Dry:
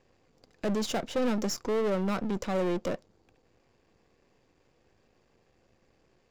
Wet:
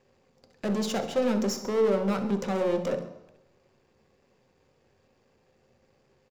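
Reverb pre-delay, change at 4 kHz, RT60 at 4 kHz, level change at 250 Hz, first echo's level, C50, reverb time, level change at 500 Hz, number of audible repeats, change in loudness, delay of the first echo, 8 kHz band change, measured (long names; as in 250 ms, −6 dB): 3 ms, +0.5 dB, 0.95 s, +2.5 dB, −13.0 dB, 8.5 dB, 0.95 s, +4.0 dB, 2, +3.0 dB, 63 ms, +0.5 dB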